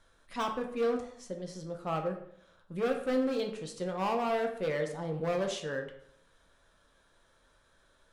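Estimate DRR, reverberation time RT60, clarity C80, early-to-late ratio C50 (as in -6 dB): 3.0 dB, 0.65 s, 11.5 dB, 8.0 dB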